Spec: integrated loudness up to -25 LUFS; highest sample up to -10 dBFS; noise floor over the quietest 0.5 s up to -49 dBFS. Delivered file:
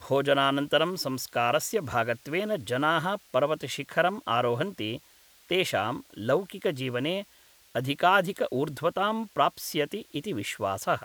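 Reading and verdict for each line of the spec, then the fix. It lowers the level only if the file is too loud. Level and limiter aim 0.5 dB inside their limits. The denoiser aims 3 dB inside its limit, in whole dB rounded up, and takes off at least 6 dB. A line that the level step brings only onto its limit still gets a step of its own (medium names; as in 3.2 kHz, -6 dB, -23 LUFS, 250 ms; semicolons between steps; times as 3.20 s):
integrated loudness -28.0 LUFS: pass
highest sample -8.0 dBFS: fail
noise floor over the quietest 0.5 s -58 dBFS: pass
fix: peak limiter -10.5 dBFS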